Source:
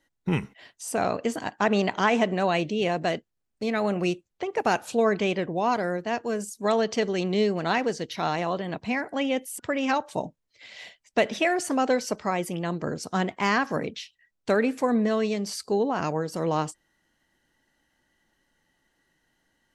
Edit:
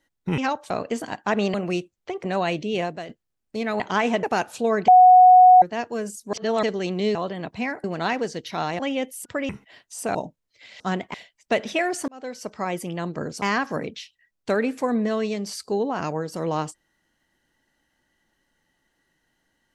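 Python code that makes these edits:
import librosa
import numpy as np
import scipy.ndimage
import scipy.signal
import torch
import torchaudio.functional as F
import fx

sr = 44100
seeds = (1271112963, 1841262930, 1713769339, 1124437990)

y = fx.edit(x, sr, fx.swap(start_s=0.38, length_s=0.66, other_s=9.83, other_length_s=0.32),
    fx.swap(start_s=1.88, length_s=0.43, other_s=3.87, other_length_s=0.7),
    fx.fade_out_to(start_s=2.91, length_s=0.25, curve='qua', floor_db=-10.5),
    fx.bleep(start_s=5.22, length_s=0.74, hz=735.0, db=-7.5),
    fx.reverse_span(start_s=6.67, length_s=0.3),
    fx.move(start_s=8.44, length_s=0.69, to_s=7.49),
    fx.fade_in_span(start_s=11.74, length_s=0.64),
    fx.move(start_s=13.08, length_s=0.34, to_s=10.8), tone=tone)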